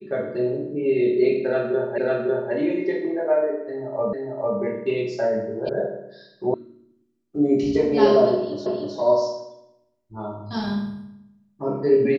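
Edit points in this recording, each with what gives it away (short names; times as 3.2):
1.98 repeat of the last 0.55 s
4.13 repeat of the last 0.45 s
5.69 sound cut off
6.54 sound cut off
8.66 repeat of the last 0.31 s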